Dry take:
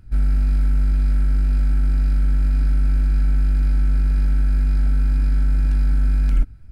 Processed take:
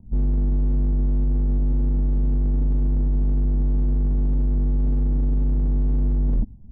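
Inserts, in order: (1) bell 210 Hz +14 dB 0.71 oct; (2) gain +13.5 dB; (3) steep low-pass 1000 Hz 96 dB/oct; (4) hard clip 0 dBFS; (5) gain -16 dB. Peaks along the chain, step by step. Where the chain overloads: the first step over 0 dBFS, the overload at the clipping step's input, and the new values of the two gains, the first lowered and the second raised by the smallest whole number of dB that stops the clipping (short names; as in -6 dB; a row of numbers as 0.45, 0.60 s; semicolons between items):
-6.5, +7.0, +7.0, 0.0, -16.0 dBFS; step 2, 7.0 dB; step 2 +6.5 dB, step 5 -9 dB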